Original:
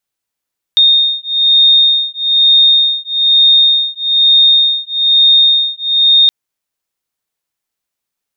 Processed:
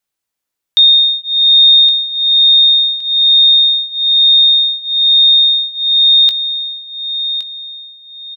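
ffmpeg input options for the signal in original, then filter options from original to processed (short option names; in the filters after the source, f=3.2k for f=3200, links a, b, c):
-f lavfi -i "aevalsrc='0.316*(sin(2*PI*3680*t)+sin(2*PI*3681.1*t))':d=5.52:s=44100"
-filter_complex "[0:a]bandreject=f=60:t=h:w=6,bandreject=f=120:t=h:w=6,bandreject=f=180:t=h:w=6,bandreject=f=240:t=h:w=6,asplit=2[a][b];[b]adelay=19,volume=-13.5dB[c];[a][c]amix=inputs=2:normalize=0,asplit=2[d][e];[e]aecho=0:1:1117|2234|3351:0.282|0.0902|0.0289[f];[d][f]amix=inputs=2:normalize=0"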